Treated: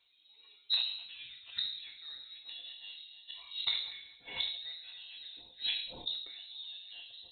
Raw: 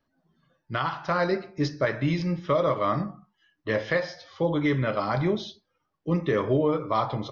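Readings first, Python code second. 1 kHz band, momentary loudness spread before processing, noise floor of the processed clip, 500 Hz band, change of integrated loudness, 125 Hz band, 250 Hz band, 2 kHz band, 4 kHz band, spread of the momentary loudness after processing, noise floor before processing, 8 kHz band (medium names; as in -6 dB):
-30.5 dB, 7 LU, -64 dBFS, -37.5 dB, -11.0 dB, under -35 dB, under -35 dB, -15.0 dB, +7.0 dB, 14 LU, -77 dBFS, no reading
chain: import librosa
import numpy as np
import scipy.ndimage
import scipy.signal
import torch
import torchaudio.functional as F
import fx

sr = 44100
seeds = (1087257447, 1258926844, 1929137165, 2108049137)

y = fx.reverse_delay(x, sr, ms=301, wet_db=-11.0)
y = scipy.signal.sosfilt(scipy.signal.butter(2, 56.0, 'highpass', fs=sr, output='sos'), y)
y = fx.high_shelf(y, sr, hz=3000.0, db=11.5)
y = 10.0 ** (-14.5 / 20.0) * np.tanh(y / 10.0 ** (-14.5 / 20.0))
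y = fx.gate_flip(y, sr, shuts_db=-25.0, range_db=-29)
y = fx.air_absorb(y, sr, metres=270.0)
y = fx.rev_fdn(y, sr, rt60_s=0.66, lf_ratio=1.4, hf_ratio=0.65, size_ms=59.0, drr_db=2.0)
y = fx.freq_invert(y, sr, carrier_hz=4000)
y = fx.sustainer(y, sr, db_per_s=70.0)
y = y * librosa.db_to_amplitude(2.5)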